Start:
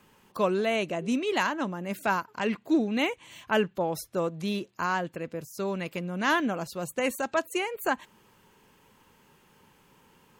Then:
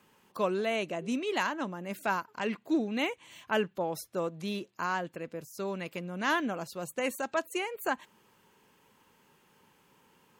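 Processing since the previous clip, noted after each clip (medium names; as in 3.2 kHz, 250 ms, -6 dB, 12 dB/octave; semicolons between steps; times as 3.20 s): bass shelf 82 Hz -11.5 dB; trim -3.5 dB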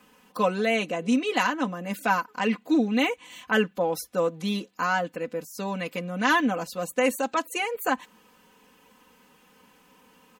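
comb 4 ms, depth 82%; trim +4.5 dB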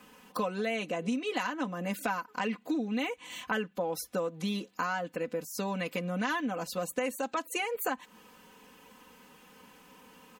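compression 5:1, threshold -32 dBFS, peak gain reduction 13.5 dB; trim +2 dB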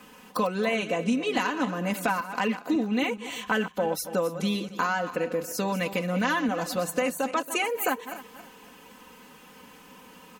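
backward echo that repeats 138 ms, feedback 54%, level -11.5 dB; trim +5.5 dB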